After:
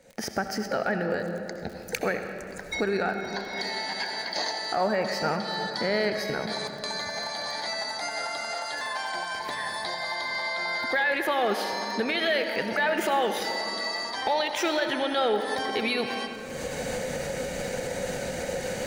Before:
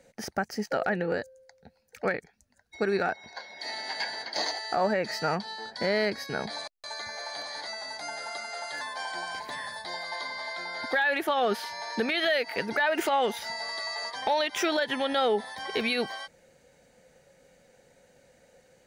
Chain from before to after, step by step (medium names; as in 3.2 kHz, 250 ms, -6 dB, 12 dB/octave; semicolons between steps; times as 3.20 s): recorder AGC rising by 59 dB/s; crackle 39 per s -37 dBFS; on a send: reverberation RT60 3.1 s, pre-delay 64 ms, DRR 6 dB